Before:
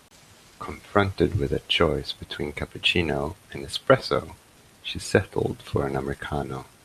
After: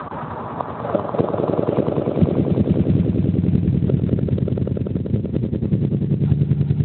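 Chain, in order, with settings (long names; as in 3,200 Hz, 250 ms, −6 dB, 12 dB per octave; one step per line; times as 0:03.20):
spectral magnitudes quantised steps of 15 dB
sample-and-hold tremolo
0:00.68–0:01.95: downward compressor 1.5 to 1, threshold −38 dBFS, peak gain reduction 7.5 dB
low-pass filter sweep 1,200 Hz → 170 Hz, 0:00.14–0:02.69
0:03.90–0:05.01: hum removal 67.17 Hz, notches 30
gate with flip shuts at −27 dBFS, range −27 dB
high-frequency loss of the air 460 metres
echo that builds up and dies away 97 ms, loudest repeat 5, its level −7 dB
boost into a limiter +31 dB
level −3 dB
Speex 18 kbit/s 8,000 Hz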